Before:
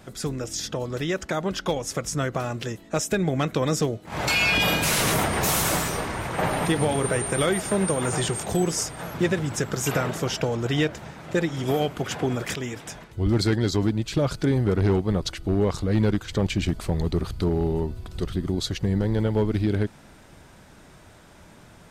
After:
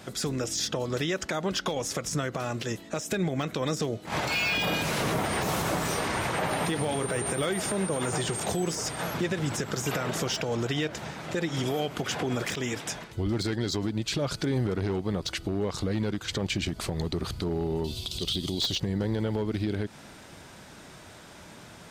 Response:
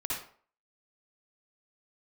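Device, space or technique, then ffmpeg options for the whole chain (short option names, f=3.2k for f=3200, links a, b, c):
broadcast voice chain: -filter_complex "[0:a]asettb=1/sr,asplit=3[a][b][c];[a]atrim=end=17.844[d];[b]atrim=start=17.84:end=18.8,asetpts=PTS-STARTPTS,afade=t=in:d=0.004:c=qsin,afade=t=out:st=0.956:d=0.004:c=qsin,highshelf=f=2.4k:t=q:w=3:g=12[e];[c]atrim=start=18.796[f];[d][e]acrossfade=d=0.004:c1=hsin:c2=qsin[g];[g][f]acrossfade=d=0.004:c1=qsin:c2=hsin,highpass=f=110:p=1,deesser=0.65,acompressor=threshold=-25dB:ratio=4,equalizer=f=4.5k:t=o:w=1.8:g=4,alimiter=limit=-21.5dB:level=0:latency=1:release=102,volume=2.5dB"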